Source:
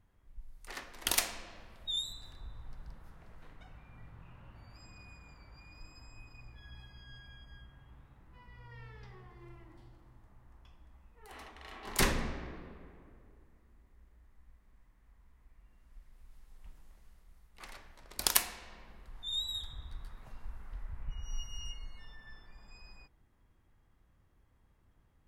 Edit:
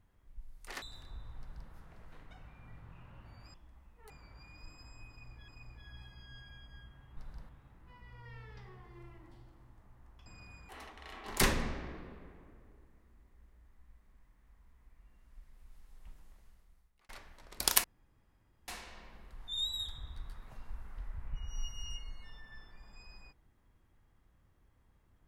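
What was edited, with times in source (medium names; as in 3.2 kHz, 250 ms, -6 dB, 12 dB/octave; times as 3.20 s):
0.82–2.12 s: delete
2.69–3.01 s: copy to 7.95 s
4.84–5.27 s: swap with 10.72–11.28 s
6.26–6.65 s: loop, 2 plays
16.69–17.68 s: fade out equal-power
18.43 s: insert room tone 0.84 s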